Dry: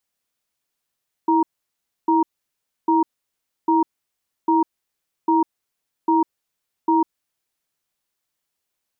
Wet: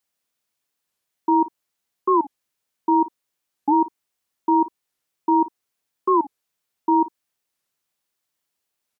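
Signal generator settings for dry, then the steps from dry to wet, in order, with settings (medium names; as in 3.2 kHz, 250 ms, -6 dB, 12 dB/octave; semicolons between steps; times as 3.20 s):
cadence 326 Hz, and 940 Hz, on 0.15 s, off 0.65 s, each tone -16.5 dBFS 5.82 s
bass shelf 62 Hz -7.5 dB; early reflections 34 ms -17.5 dB, 54 ms -17 dB; warped record 45 rpm, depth 250 cents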